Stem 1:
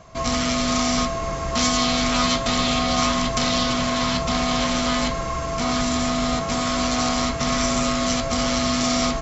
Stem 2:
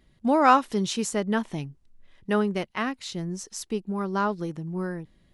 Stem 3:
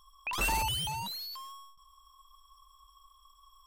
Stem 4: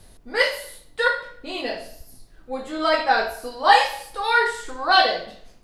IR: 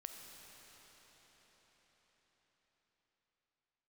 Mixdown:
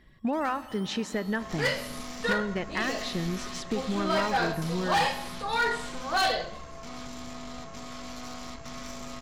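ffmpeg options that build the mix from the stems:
-filter_complex "[0:a]aeval=exprs='(tanh(8.91*val(0)+0.55)-tanh(0.55))/8.91':c=same,adelay=1250,volume=-16dB,asplit=2[a][b];[b]volume=-14dB[c];[1:a]lowpass=4.2k,equalizer=f=1.8k:t=o:w=0.27:g=10,acompressor=threshold=-30dB:ratio=6,volume=1dB,asplit=2[d][e];[e]volume=-4.5dB[f];[2:a]acompressor=threshold=-35dB:ratio=6,asoftclip=type=tanh:threshold=-31dB,volume=-13.5dB[g];[3:a]adelay=1250,volume=-6.5dB[h];[4:a]atrim=start_sample=2205[i];[c][f]amix=inputs=2:normalize=0[j];[j][i]afir=irnorm=-1:irlink=0[k];[a][d][g][h][k]amix=inputs=5:normalize=0,volume=20.5dB,asoftclip=hard,volume=-20.5dB"

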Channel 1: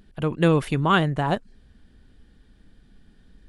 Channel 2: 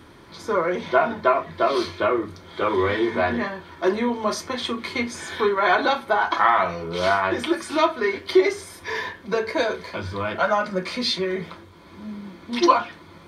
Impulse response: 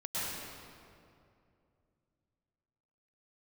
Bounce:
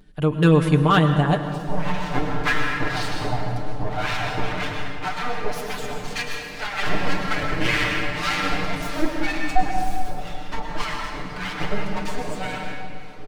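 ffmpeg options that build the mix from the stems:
-filter_complex "[0:a]asoftclip=type=hard:threshold=-10.5dB,volume=-1dB,asplit=2[a][b];[b]volume=-12.5dB[c];[1:a]aeval=exprs='abs(val(0))':c=same,acrossover=split=860[d][e];[d]aeval=exprs='val(0)*(1-1/2+1/2*cos(2*PI*1.9*n/s))':c=same[f];[e]aeval=exprs='val(0)*(1-1/2-1/2*cos(2*PI*1.9*n/s))':c=same[g];[f][g]amix=inputs=2:normalize=0,highshelf=f=8.6k:g=-4,adelay=1200,volume=-2dB,asplit=2[h][i];[i]volume=-3dB[j];[2:a]atrim=start_sample=2205[k];[c][j]amix=inputs=2:normalize=0[l];[l][k]afir=irnorm=-1:irlink=0[m];[a][h][m]amix=inputs=3:normalize=0,aecho=1:1:6.7:0.77"

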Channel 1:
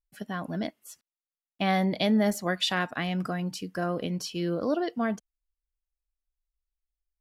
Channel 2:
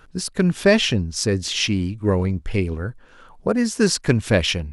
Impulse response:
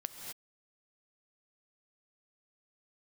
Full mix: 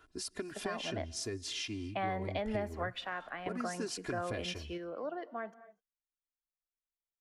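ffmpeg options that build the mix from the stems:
-filter_complex "[0:a]acrossover=split=420 2300:gain=0.141 1 0.0891[a][b][c];[a][b][c]amix=inputs=3:normalize=0,adelay=350,volume=-0.5dB,asplit=2[d][e];[e]volume=-19.5dB[f];[1:a]highpass=f=100:p=1,aecho=1:1:2.9:0.92,acompressor=threshold=-24dB:ratio=3,volume=-14dB,asplit=3[g][h][i];[h]volume=-16.5dB[j];[i]apad=whole_len=333140[k];[d][k]sidechaingate=range=-8dB:threshold=-56dB:ratio=16:detection=peak[l];[2:a]atrim=start_sample=2205[m];[f][j]amix=inputs=2:normalize=0[n];[n][m]afir=irnorm=-1:irlink=0[o];[l][g][o]amix=inputs=3:normalize=0,acrossover=split=190[p][q];[q]acompressor=threshold=-34dB:ratio=4[r];[p][r]amix=inputs=2:normalize=0"

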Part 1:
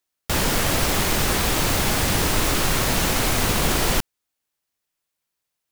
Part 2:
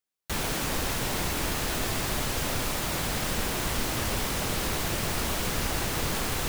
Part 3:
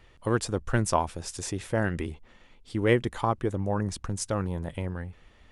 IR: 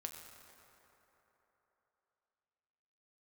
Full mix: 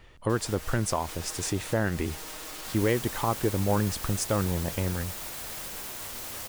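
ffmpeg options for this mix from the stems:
-filter_complex "[0:a]aecho=1:1:6.4:0.92,volume=-8.5dB[a];[1:a]highshelf=f=8.5k:g=8,flanger=delay=5.6:depth=4.1:regen=-63:speed=1.2:shape=triangular,adelay=2350,volume=-7dB,asplit=2[b][c];[c]volume=-6dB[d];[2:a]alimiter=limit=-18dB:level=0:latency=1:release=238,volume=3dB,asplit=2[e][f];[f]apad=whole_len=252468[g];[a][g]sidechaincompress=threshold=-39dB:ratio=12:attack=12:release=427[h];[h][b]amix=inputs=2:normalize=0,bass=f=250:g=-15,treble=f=4k:g=3,alimiter=level_in=7dB:limit=-24dB:level=0:latency=1,volume=-7dB,volume=0dB[i];[3:a]atrim=start_sample=2205[j];[d][j]afir=irnorm=-1:irlink=0[k];[e][i][k]amix=inputs=3:normalize=0"

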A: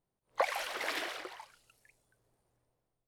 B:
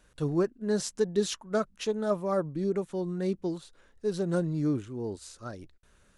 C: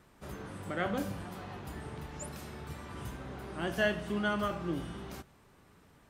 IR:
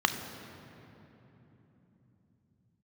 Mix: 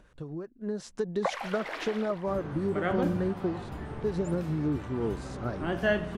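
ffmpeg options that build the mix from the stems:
-filter_complex "[0:a]adelay=850,volume=-8.5dB[a];[1:a]acompressor=mode=upward:threshold=-47dB:ratio=2.5,acrossover=split=590[b][c];[b]aeval=exprs='val(0)*(1-0.5/2+0.5/2*cos(2*PI*5.5*n/s))':c=same[d];[c]aeval=exprs='val(0)*(1-0.5/2-0.5/2*cos(2*PI*5.5*n/s))':c=same[e];[d][e]amix=inputs=2:normalize=0,acompressor=threshold=-35dB:ratio=12,volume=-1dB[f];[2:a]adelay=2050,volume=-5.5dB[g];[a][f][g]amix=inputs=3:normalize=0,lowpass=f=1.8k:p=1,dynaudnorm=f=280:g=5:m=10dB"

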